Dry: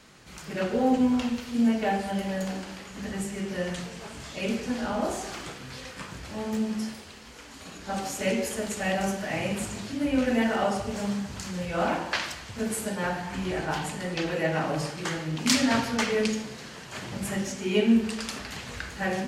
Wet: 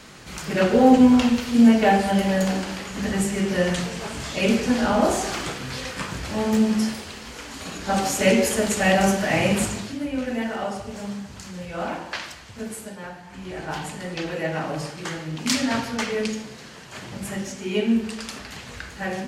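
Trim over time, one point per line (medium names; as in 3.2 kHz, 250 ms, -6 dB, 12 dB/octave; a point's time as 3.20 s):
9.64 s +9 dB
10.09 s -2.5 dB
12.61 s -2.5 dB
13.21 s -9.5 dB
13.76 s 0 dB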